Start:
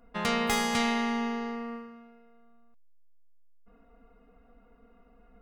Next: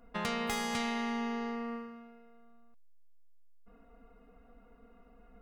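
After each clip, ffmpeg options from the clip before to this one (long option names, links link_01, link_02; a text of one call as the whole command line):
ffmpeg -i in.wav -af "acompressor=threshold=-34dB:ratio=2.5" out.wav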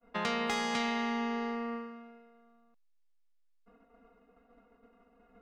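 ffmpeg -i in.wav -filter_complex "[0:a]agate=range=-33dB:threshold=-53dB:ratio=3:detection=peak,acrossover=split=170 7000:gain=0.224 1 0.141[link_01][link_02][link_03];[link_01][link_02][link_03]amix=inputs=3:normalize=0,volume=2.5dB" out.wav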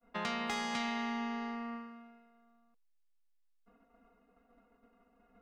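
ffmpeg -i in.wav -af "bandreject=frequency=460:width=12,volume=-3.5dB" out.wav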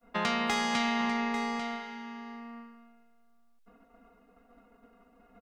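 ffmpeg -i in.wav -af "aecho=1:1:845:0.282,volume=7dB" out.wav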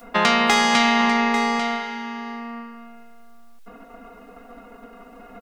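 ffmpeg -i in.wav -filter_complex "[0:a]equalizer=frequency=82:width_type=o:width=1.9:gain=-10.5,asplit=2[link_01][link_02];[link_02]acompressor=mode=upward:threshold=-41dB:ratio=2.5,volume=-2dB[link_03];[link_01][link_03]amix=inputs=2:normalize=0,volume=7.5dB" out.wav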